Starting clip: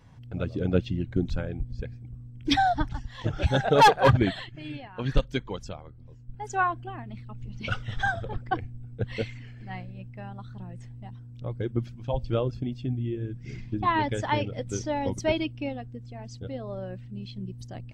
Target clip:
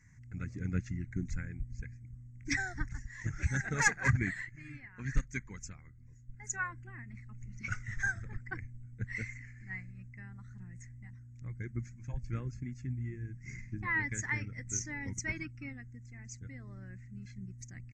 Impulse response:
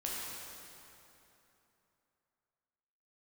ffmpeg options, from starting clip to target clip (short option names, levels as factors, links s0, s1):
-filter_complex "[0:a]tiltshelf=f=780:g=-4.5,asplit=2[s0][s1];[s1]asetrate=22050,aresample=44100,atempo=2,volume=0.141[s2];[s0][s2]amix=inputs=2:normalize=0,firequalizer=gain_entry='entry(120,0);entry(220,-3);entry(590,-25);entry(2000,5);entry(3100,-30);entry(6700,8);entry(10000,-18)':delay=0.05:min_phase=1,volume=0.708"